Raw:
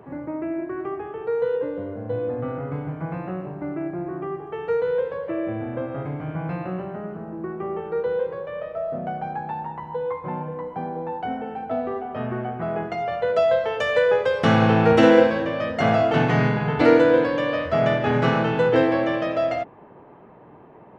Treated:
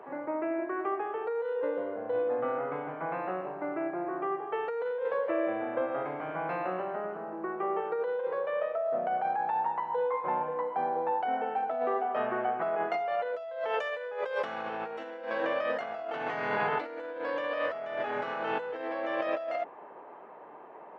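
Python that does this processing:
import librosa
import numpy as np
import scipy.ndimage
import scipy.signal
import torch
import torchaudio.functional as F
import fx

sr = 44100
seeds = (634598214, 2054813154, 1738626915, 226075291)

y = fx.steep_lowpass(x, sr, hz=4200.0, slope=36, at=(1.68, 3.19))
y = scipy.signal.sosfilt(scipy.signal.butter(2, 590.0, 'highpass', fs=sr, output='sos'), y)
y = fx.high_shelf(y, sr, hz=3100.0, db=-11.5)
y = fx.over_compress(y, sr, threshold_db=-32.0, ratio=-1.0)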